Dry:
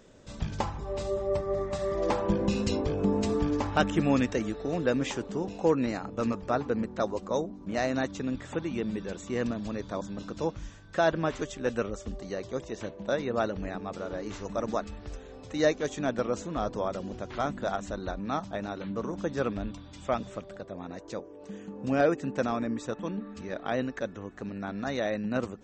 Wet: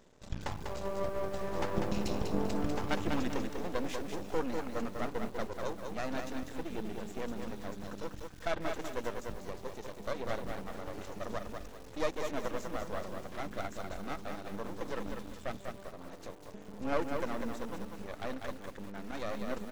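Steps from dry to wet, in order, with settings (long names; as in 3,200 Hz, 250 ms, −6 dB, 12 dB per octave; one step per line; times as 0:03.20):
tempo change 1.3×
half-wave rectification
feedback echo at a low word length 196 ms, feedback 35%, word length 8 bits, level −5 dB
level −3 dB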